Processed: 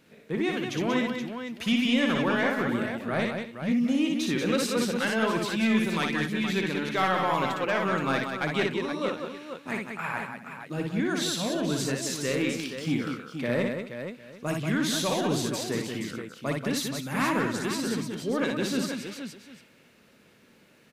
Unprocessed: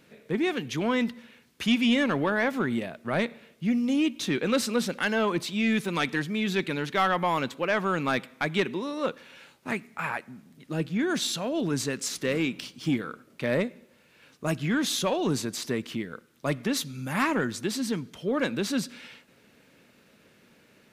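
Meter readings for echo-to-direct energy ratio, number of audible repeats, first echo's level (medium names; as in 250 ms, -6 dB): -0.5 dB, 5, -3.5 dB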